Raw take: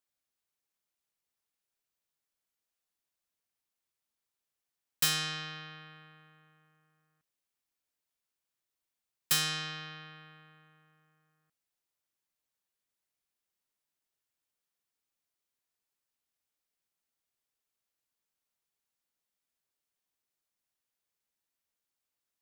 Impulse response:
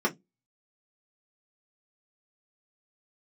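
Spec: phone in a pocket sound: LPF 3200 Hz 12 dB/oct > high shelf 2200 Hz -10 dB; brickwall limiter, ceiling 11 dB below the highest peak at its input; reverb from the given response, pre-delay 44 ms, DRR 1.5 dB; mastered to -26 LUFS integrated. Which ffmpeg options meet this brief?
-filter_complex "[0:a]alimiter=level_in=2dB:limit=-24dB:level=0:latency=1,volume=-2dB,asplit=2[a][b];[1:a]atrim=start_sample=2205,adelay=44[c];[b][c]afir=irnorm=-1:irlink=0,volume=-12.5dB[d];[a][d]amix=inputs=2:normalize=0,lowpass=3.2k,highshelf=f=2.2k:g=-10,volume=18.5dB"

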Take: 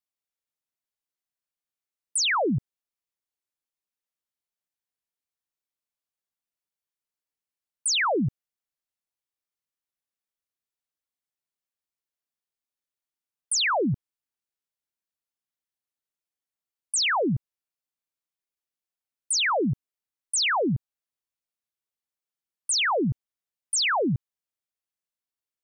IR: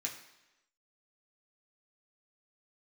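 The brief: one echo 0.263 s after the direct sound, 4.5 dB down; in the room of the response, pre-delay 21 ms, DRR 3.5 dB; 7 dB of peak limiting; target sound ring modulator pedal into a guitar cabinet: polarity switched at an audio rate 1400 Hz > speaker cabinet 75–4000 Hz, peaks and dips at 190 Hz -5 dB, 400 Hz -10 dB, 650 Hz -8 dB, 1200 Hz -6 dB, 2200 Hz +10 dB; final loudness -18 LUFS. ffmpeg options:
-filter_complex "[0:a]alimiter=level_in=3.5dB:limit=-24dB:level=0:latency=1,volume=-3.5dB,aecho=1:1:263:0.596,asplit=2[a][b];[1:a]atrim=start_sample=2205,adelay=21[c];[b][c]afir=irnorm=-1:irlink=0,volume=-4dB[d];[a][d]amix=inputs=2:normalize=0,aeval=exprs='val(0)*sgn(sin(2*PI*1400*n/s))':c=same,highpass=75,equalizer=f=190:t=q:w=4:g=-5,equalizer=f=400:t=q:w=4:g=-10,equalizer=f=650:t=q:w=4:g=-8,equalizer=f=1.2k:t=q:w=4:g=-6,equalizer=f=2.2k:t=q:w=4:g=10,lowpass=f=4k:w=0.5412,lowpass=f=4k:w=1.3066,volume=11dB"

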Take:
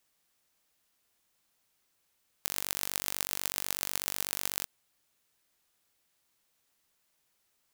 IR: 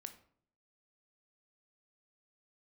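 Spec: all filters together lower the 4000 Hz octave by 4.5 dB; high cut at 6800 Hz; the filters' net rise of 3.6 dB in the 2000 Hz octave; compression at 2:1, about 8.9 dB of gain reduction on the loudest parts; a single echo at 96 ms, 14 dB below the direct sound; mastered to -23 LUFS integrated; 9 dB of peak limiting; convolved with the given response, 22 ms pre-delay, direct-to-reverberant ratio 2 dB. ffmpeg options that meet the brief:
-filter_complex "[0:a]lowpass=6.8k,equalizer=f=2k:t=o:g=6.5,equalizer=f=4k:t=o:g=-7.5,acompressor=threshold=-47dB:ratio=2,alimiter=level_in=2.5dB:limit=-24dB:level=0:latency=1,volume=-2.5dB,aecho=1:1:96:0.2,asplit=2[a][b];[1:a]atrim=start_sample=2205,adelay=22[c];[b][c]afir=irnorm=-1:irlink=0,volume=3dB[d];[a][d]amix=inputs=2:normalize=0,volume=25.5dB"

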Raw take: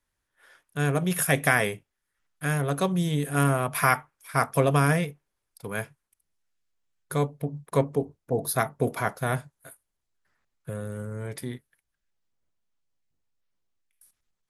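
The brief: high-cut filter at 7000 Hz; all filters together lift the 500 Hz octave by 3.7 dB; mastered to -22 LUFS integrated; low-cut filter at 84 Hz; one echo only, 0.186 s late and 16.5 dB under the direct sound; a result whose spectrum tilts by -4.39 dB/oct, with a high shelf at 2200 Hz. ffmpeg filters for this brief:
-af "highpass=84,lowpass=7k,equalizer=f=500:t=o:g=5,highshelf=f=2.2k:g=-8.5,aecho=1:1:186:0.15,volume=4dB"

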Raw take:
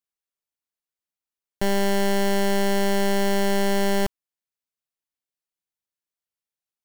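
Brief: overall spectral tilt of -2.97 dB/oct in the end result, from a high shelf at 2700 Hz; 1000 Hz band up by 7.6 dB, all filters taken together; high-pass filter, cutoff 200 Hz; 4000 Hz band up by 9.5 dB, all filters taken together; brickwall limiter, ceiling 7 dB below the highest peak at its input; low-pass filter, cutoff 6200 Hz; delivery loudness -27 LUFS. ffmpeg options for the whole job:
-af "highpass=200,lowpass=6.2k,equalizer=f=1k:t=o:g=9,highshelf=f=2.7k:g=5.5,equalizer=f=4k:t=o:g=8,volume=-0.5dB,alimiter=limit=-14dB:level=0:latency=1"

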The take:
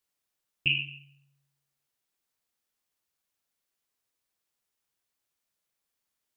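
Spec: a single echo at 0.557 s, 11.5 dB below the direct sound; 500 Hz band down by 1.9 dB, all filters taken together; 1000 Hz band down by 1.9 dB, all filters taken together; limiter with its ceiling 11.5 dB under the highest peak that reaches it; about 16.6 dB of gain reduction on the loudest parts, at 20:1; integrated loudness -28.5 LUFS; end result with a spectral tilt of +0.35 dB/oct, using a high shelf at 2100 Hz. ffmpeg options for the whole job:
-af "equalizer=f=500:t=o:g=-3.5,equalizer=f=1k:t=o:g=-3,highshelf=f=2.1k:g=7.5,acompressor=threshold=-33dB:ratio=20,alimiter=level_in=6.5dB:limit=-24dB:level=0:latency=1,volume=-6.5dB,aecho=1:1:557:0.266,volume=16.5dB"

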